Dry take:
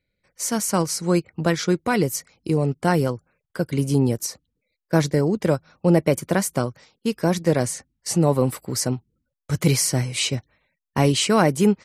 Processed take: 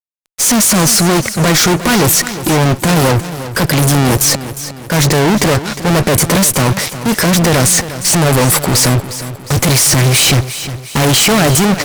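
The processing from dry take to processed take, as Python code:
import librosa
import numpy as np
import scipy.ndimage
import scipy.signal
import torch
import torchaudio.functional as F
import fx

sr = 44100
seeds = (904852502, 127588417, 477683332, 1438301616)

y = fx.high_shelf(x, sr, hz=3600.0, db=4.0)
y = fx.fuzz(y, sr, gain_db=43.0, gate_db=-52.0)
y = fx.transient(y, sr, attack_db=-2, sustain_db=5)
y = fx.vibrato(y, sr, rate_hz=0.31, depth_cents=33.0)
y = fx.echo_feedback(y, sr, ms=357, feedback_pct=46, wet_db=-13)
y = y * 10.0 ** (4.0 / 20.0)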